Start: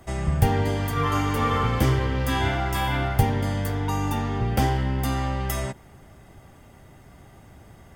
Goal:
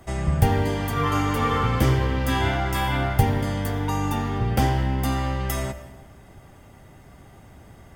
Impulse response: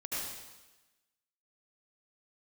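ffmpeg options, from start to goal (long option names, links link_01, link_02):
-filter_complex "[0:a]asplit=2[link_01][link_02];[1:a]atrim=start_sample=2205,highshelf=frequency=4900:gain=-7[link_03];[link_02][link_03]afir=irnorm=-1:irlink=0,volume=-13.5dB[link_04];[link_01][link_04]amix=inputs=2:normalize=0"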